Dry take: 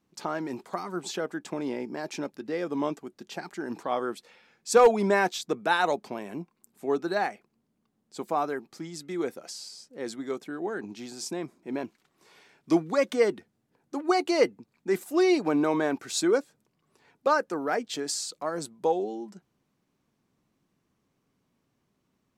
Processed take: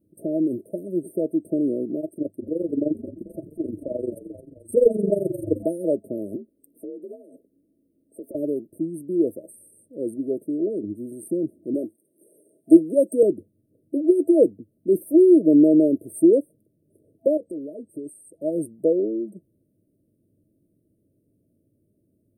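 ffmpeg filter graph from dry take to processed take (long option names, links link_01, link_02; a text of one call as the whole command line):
ffmpeg -i in.wav -filter_complex "[0:a]asettb=1/sr,asplit=3[link_01][link_02][link_03];[link_01]atrim=end=2.004[link_04];[link_02]atrim=start=2:end=5.63,asetpts=PTS-STARTPTS,afade=type=in:duration=0.004:curve=qsin,afade=type=out:start_time=3.626:duration=0.004:curve=qsin,tremolo=f=23:d=0.824,asplit=7[link_05][link_06][link_07][link_08][link_09][link_10][link_11];[link_06]adelay=219,afreqshift=-48,volume=-14dB[link_12];[link_07]adelay=438,afreqshift=-96,volume=-19.2dB[link_13];[link_08]adelay=657,afreqshift=-144,volume=-24.4dB[link_14];[link_09]adelay=876,afreqshift=-192,volume=-29.6dB[link_15];[link_10]adelay=1095,afreqshift=-240,volume=-34.8dB[link_16];[link_11]adelay=1314,afreqshift=-288,volume=-40dB[link_17];[link_05][link_12][link_13][link_14][link_15][link_16][link_17]amix=inputs=7:normalize=0,atrim=end_sample=160083[link_18];[link_03]atrim=start=5.626[link_19];[link_04][link_18]acrossfade=duration=0.004:curve1=hsin:curve2=qsin[link_20];[link_20][link_19]acrossfade=duration=0.004:curve1=qsin:curve2=hsin,asettb=1/sr,asplit=3[link_21][link_22][link_23];[link_21]atrim=end=6.364[link_24];[link_22]atrim=start=6.36:end=8.35,asetpts=PTS-STARTPTS,afade=type=in:duration=0.004:curve=qsin,afade=type=out:start_time=1.986:duration=0.004:curve=qsin,afreqshift=51,acompressor=threshold=-40dB:ratio=10:attack=3.2:release=140:knee=1:detection=peak[link_25];[link_23]atrim=start=8.346[link_26];[link_24][link_25]acrossfade=duration=0.004:curve1=hsin:curve2=qsin[link_27];[link_27][link_26]acrossfade=duration=0.004:curve1=qsin:curve2=hsin,asettb=1/sr,asplit=3[link_28][link_29][link_30];[link_28]atrim=end=11.744[link_31];[link_29]atrim=start=11.74:end=13.23,asetpts=PTS-STARTPTS,afade=type=in:duration=0.004:curve=qsin,afade=type=out:start_time=1.486:duration=0.004:curve=qsin,highpass=240,equalizer=frequency=6500:width=0.69:gain=14.5[link_32];[link_30]atrim=start=13.226[link_33];[link_31][link_32]acrossfade=duration=0.004:curve1=hsin:curve2=qsin[link_34];[link_34][link_33]acrossfade=duration=0.004:curve1=qsin:curve2=hsin,asettb=1/sr,asplit=3[link_35][link_36][link_37];[link_35]atrim=end=17.374[link_38];[link_36]atrim=start=17.37:end=18.42,asetpts=PTS-STARTPTS,afade=type=in:duration=0.004:curve=qsin,afade=type=out:start_time=1.046:duration=0.004:curve=qsin,lowpass=11000,bandreject=frequency=470:width=14,acompressor=threshold=-40dB:ratio=3:attack=3.2:release=140:knee=1:detection=peak[link_39];[link_37]atrim=start=18.416[link_40];[link_38][link_39]acrossfade=duration=0.004:curve1=hsin:curve2=qsin[link_41];[link_41][link_40]acrossfade=duration=0.004:curve1=qsin:curve2=hsin,afftfilt=real='re*(1-between(b*sr/4096,660,8400))':imag='im*(1-between(b*sr/4096,660,8400))':win_size=4096:overlap=0.75,equalizer=frequency=100:width_type=o:width=0.33:gain=12,equalizer=frequency=315:width_type=o:width=0.33:gain=9,equalizer=frequency=800:width_type=o:width=0.33:gain=9,volume=4.5dB" out.wav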